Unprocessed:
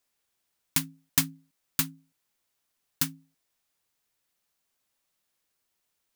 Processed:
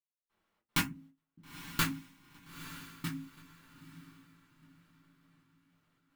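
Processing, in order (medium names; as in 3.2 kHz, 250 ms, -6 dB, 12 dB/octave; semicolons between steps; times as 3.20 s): tone controls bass -7 dB, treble -12 dB; peak limiter -19.5 dBFS, peak gain reduction 6.5 dB; trance gate "...xxx.x.xx" 153 bpm -60 dB; echo that smears into a reverb 910 ms, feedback 40%, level -12.5 dB; reverberation RT60 0.20 s, pre-delay 4 ms, DRR -6.5 dB; tape noise reduction on one side only decoder only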